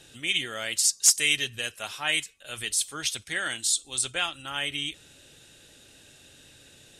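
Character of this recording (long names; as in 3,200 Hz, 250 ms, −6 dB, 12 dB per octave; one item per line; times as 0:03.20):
background noise floor −55 dBFS
spectral slope −1.5 dB per octave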